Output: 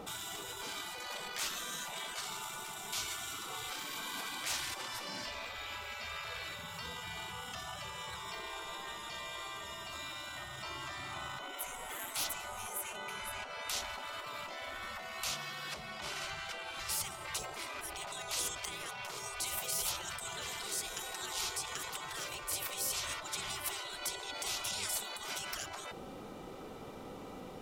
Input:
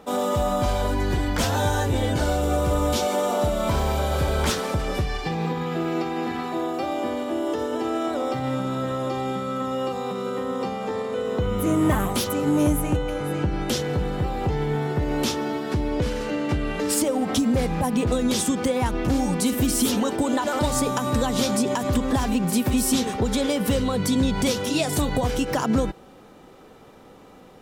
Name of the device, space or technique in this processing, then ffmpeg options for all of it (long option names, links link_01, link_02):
stacked limiters: -filter_complex "[0:a]alimiter=limit=-19dB:level=0:latency=1:release=23,alimiter=limit=-22.5dB:level=0:latency=1:release=12,asettb=1/sr,asplit=3[link_01][link_02][link_03];[link_01]atrim=end=15.314[link_04];[link_02]atrim=start=15.31:end=16.25,asetpts=PTS-STARTPTS,afade=type=in:duration=0.004:curve=qsin,afade=type=out:start_time=0.936:duration=0.004:curve=qsin,highpass=280[link_05];[link_03]atrim=start=16.246[link_06];[link_04][link_05]acrossfade=duration=0.004:curve1=hsin:curve2=qsin[link_07];[link_07][link_06]acrossfade=duration=0.004:curve1=qsin:curve2=hsin,bandreject=frequency=1700:width=8.2,afftfilt=real='re*lt(hypot(re,im),0.0398)':imag='im*lt(hypot(re,im),0.0398)':win_size=1024:overlap=0.75,volume=1dB"